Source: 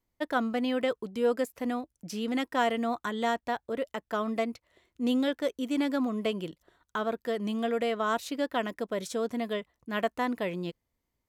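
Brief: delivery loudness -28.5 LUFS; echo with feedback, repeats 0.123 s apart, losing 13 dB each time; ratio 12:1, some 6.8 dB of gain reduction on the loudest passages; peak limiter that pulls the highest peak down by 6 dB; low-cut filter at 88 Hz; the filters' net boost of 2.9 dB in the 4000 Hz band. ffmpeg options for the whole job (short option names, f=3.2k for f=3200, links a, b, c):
-af "highpass=88,equalizer=f=4k:t=o:g=4,acompressor=threshold=-28dB:ratio=12,alimiter=level_in=0.5dB:limit=-24dB:level=0:latency=1,volume=-0.5dB,aecho=1:1:123|246|369:0.224|0.0493|0.0108,volume=6.5dB"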